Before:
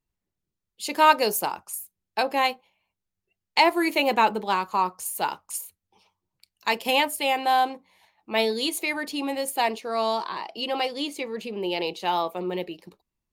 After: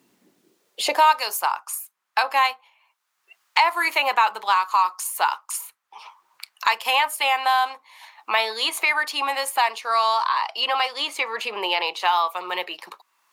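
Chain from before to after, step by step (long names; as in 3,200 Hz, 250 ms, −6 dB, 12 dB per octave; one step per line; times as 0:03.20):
high-pass filter sweep 250 Hz → 1,100 Hz, 0:00.33–0:01.19
in parallel at −1.5 dB: brickwall limiter −15.5 dBFS, peak gain reduction 14.5 dB
on the sum: high-shelf EQ 11,000 Hz −3.5 dB
multiband upward and downward compressor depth 70%
level −1.5 dB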